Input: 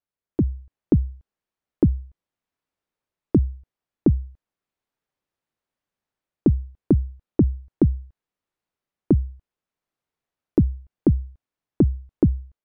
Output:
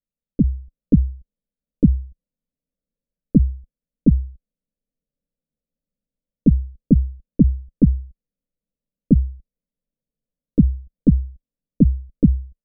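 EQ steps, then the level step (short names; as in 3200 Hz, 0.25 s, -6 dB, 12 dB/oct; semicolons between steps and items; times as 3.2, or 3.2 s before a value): steep low-pass 570 Hz 48 dB/oct; tilt -3 dB/oct; fixed phaser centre 360 Hz, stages 6; 0.0 dB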